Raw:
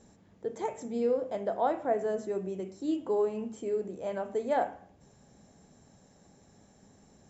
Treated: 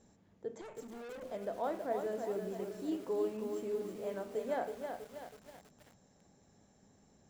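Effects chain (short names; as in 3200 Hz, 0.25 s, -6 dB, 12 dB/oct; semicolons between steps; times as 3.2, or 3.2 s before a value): dynamic EQ 810 Hz, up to -5 dB, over -43 dBFS, Q 3.8; 0.61–1.23 tube stage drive 39 dB, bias 0.65; lo-fi delay 0.323 s, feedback 55%, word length 8-bit, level -5.5 dB; gain -6.5 dB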